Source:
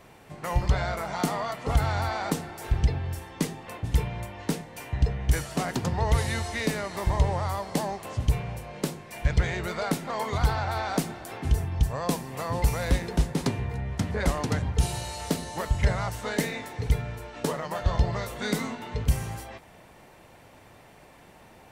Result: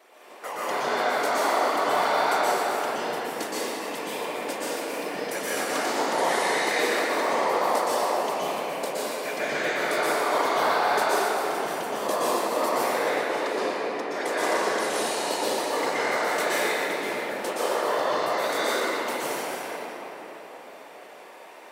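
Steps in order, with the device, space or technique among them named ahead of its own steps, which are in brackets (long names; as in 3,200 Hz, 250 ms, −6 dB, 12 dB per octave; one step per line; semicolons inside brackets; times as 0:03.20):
0:12.69–0:14.19: bass and treble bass −6 dB, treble −9 dB
whispering ghost (random phases in short frames; high-pass filter 370 Hz 24 dB per octave; convolution reverb RT60 4.0 s, pre-delay 114 ms, DRR −9.5 dB)
level −2 dB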